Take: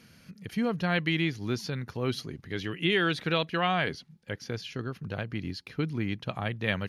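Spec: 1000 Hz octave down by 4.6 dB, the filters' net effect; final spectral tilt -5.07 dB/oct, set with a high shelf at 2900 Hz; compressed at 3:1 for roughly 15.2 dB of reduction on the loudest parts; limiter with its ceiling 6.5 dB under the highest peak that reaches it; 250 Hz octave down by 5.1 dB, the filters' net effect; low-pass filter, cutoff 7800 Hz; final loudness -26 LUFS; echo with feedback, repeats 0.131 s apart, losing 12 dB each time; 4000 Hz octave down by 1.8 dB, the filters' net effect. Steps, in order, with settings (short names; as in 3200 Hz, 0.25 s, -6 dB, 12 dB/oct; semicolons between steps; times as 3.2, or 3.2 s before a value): LPF 7800 Hz; bell 250 Hz -7.5 dB; bell 1000 Hz -7 dB; high shelf 2900 Hz +5.5 dB; bell 4000 Hz -6 dB; compressor 3:1, threshold -46 dBFS; limiter -35.5 dBFS; feedback echo 0.131 s, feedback 25%, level -12 dB; gain +21 dB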